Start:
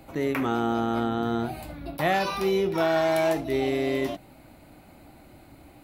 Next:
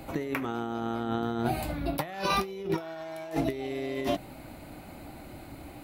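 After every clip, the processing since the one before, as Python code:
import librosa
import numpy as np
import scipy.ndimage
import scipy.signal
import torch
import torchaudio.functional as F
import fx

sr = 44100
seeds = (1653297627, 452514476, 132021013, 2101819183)

y = fx.over_compress(x, sr, threshold_db=-30.0, ratio=-0.5)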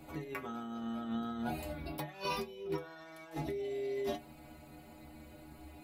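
y = fx.stiff_resonator(x, sr, f0_hz=73.0, decay_s=0.34, stiffness=0.008)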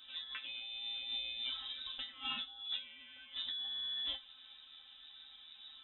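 y = fx.freq_invert(x, sr, carrier_hz=3800)
y = y * 10.0 ** (-3.5 / 20.0)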